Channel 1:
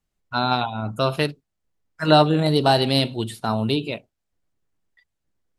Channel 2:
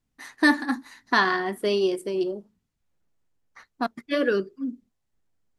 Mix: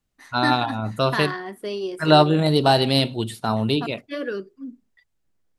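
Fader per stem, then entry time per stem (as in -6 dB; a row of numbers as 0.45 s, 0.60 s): +0.5 dB, -5.5 dB; 0.00 s, 0.00 s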